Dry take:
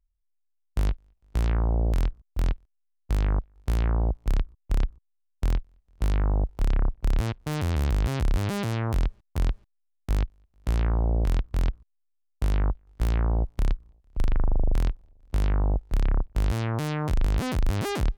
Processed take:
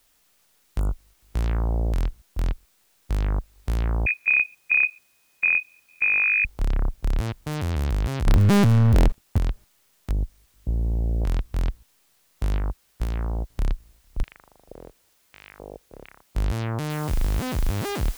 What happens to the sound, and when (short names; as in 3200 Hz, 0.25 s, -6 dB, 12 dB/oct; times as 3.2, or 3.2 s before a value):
0.79–1.1 spectral delete 1500–6700 Hz
4.06–6.45 inverted band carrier 2500 Hz
8.27–9.38 sample leveller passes 5
10.12–11.21 Gaussian blur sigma 15 samples
12.58–13.5 upward expander 2.5:1, over -37 dBFS
14.23–16.35 LFO band-pass square 1.1 Hz 490–2400 Hz
16.9 noise floor step -64 dB -43 dB